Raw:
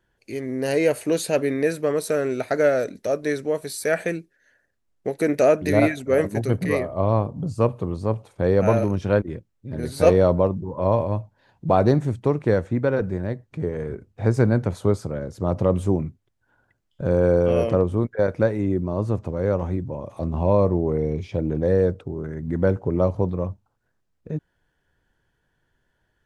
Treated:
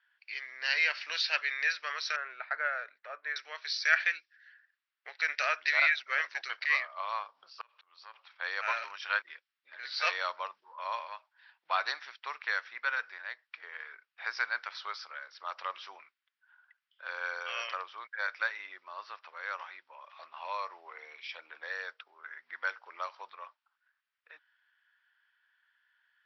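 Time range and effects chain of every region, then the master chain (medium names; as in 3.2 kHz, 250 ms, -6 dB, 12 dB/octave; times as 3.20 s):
2.16–3.36 s: low-pass 1.3 kHz + bass shelf 140 Hz +10 dB
7.61–8.15 s: treble shelf 2.8 kHz +8 dB + compression 5:1, threshold -26 dBFS + slow attack 388 ms
whole clip: high-pass 1.4 kHz 24 dB/octave; level-controlled noise filter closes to 2.9 kHz, open at -34.5 dBFS; Chebyshev low-pass 5.6 kHz, order 8; trim +5.5 dB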